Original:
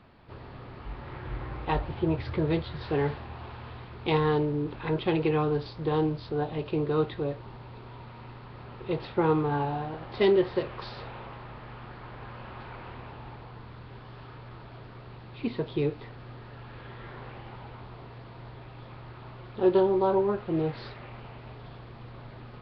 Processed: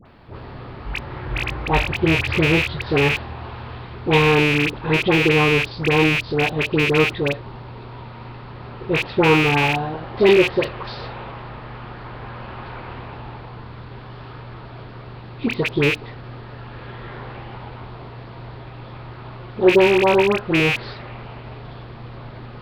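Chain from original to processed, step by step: rattling part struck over -32 dBFS, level -16 dBFS; dispersion highs, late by 60 ms, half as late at 1300 Hz; gain +8.5 dB

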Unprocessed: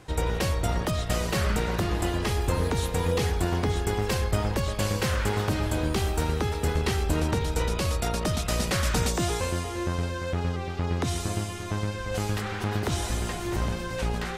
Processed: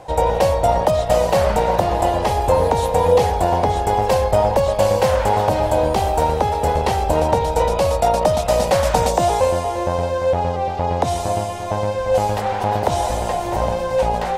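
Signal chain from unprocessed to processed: band shelf 690 Hz +15 dB 1.2 oct; gain +3 dB

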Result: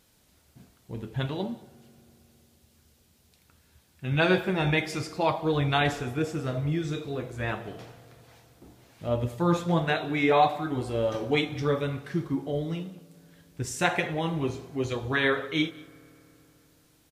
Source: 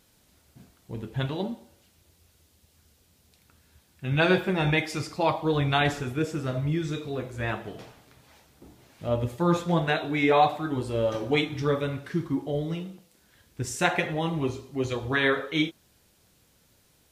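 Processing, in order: echo 0.194 s -23.5 dB; on a send at -20 dB: reverb RT60 3.6 s, pre-delay 3 ms; on the sum: gain -1 dB

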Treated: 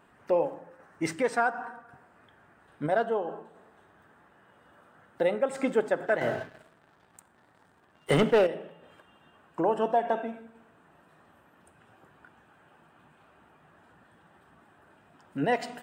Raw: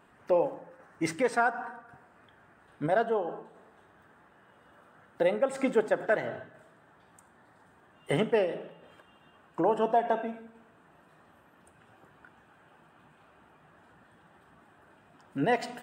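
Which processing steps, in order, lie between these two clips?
6.21–8.47 sample leveller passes 2

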